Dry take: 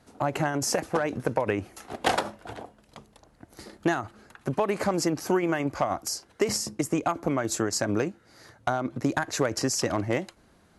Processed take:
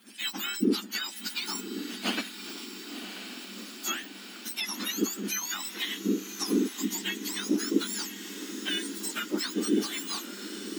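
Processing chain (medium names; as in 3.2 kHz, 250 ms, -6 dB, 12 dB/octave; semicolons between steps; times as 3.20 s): spectrum inverted on a logarithmic axis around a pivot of 1.5 kHz; ten-band graphic EQ 125 Hz -8 dB, 250 Hz +5 dB, 500 Hz -10 dB, 1 kHz -4 dB, 8 kHz -4 dB; on a send: echo that smears into a reverb 1067 ms, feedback 61%, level -10 dB; on the sum: tape noise reduction on one side only encoder only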